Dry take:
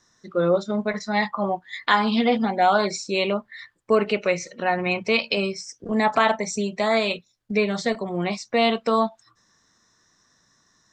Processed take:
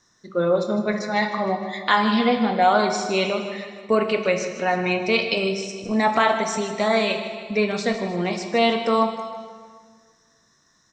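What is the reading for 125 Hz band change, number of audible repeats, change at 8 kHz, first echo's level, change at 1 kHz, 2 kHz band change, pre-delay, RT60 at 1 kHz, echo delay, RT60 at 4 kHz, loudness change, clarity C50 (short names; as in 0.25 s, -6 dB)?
+1.0 dB, 5, +1.0 dB, -12.5 dB, +1.5 dB, +1.0 dB, 12 ms, 1.7 s, 0.155 s, 1.5 s, +1.0 dB, 6.5 dB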